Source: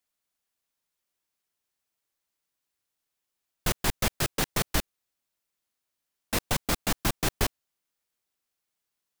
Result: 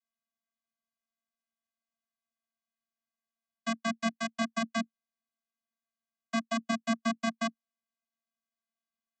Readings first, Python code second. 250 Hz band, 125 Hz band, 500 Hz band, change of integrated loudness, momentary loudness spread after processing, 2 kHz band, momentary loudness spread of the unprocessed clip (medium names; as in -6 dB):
+3.5 dB, -14.0 dB, -2.5 dB, -4.5 dB, 5 LU, -2.5 dB, 4 LU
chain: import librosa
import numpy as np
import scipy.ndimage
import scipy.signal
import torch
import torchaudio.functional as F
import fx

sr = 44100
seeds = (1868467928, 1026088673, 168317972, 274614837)

y = fx.low_shelf_res(x, sr, hz=690.0, db=-7.0, q=1.5)
y = fx.hpss(y, sr, part='harmonic', gain_db=-17)
y = fx.vocoder(y, sr, bands=16, carrier='square', carrier_hz=227.0)
y = F.gain(torch.from_numpy(y), 1.0).numpy()